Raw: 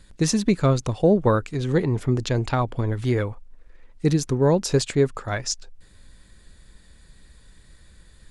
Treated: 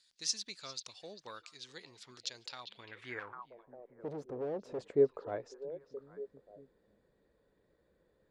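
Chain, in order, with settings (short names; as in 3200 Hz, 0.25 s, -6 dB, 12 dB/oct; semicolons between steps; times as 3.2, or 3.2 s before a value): delay with a stepping band-pass 0.4 s, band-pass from 3500 Hz, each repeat -1.4 oct, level -11 dB; 3.19–4.8 overloaded stage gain 27 dB; band-pass sweep 4800 Hz -> 480 Hz, 2.56–3.79; gain -3.5 dB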